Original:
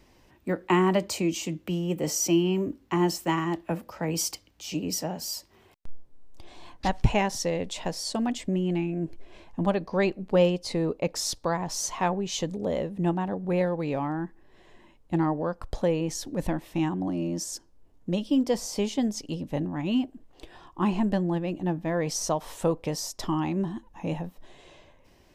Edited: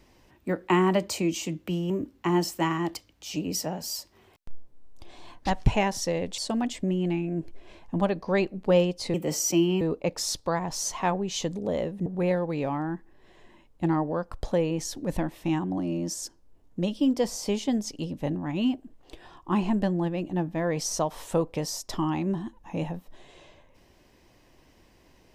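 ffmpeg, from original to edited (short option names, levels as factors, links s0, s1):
-filter_complex "[0:a]asplit=7[s0][s1][s2][s3][s4][s5][s6];[s0]atrim=end=1.902[s7];[s1]atrim=start=2.568:end=3.622[s8];[s2]atrim=start=4.328:end=7.762[s9];[s3]atrim=start=8.028:end=10.792[s10];[s4]atrim=start=1.898:end=2.572[s11];[s5]atrim=start=10.788:end=13.042[s12];[s6]atrim=start=13.358[s13];[s7][s8]acrossfade=d=0.004:c1=hsin:c2=hsin[s14];[s14][s9]acrossfade=d=0.004:c1=hsin:c2=hsin[s15];[s15][s10]acrossfade=d=0.004:c1=hsin:c2=hsin[s16];[s16][s11]acrossfade=d=0.004:c1=hsin:c2=hsin[s17];[s17][s12]acrossfade=d=0.004:c1=hsin:c2=hsin[s18];[s18][s13]acrossfade=d=0.004:c1=hsin:c2=hsin"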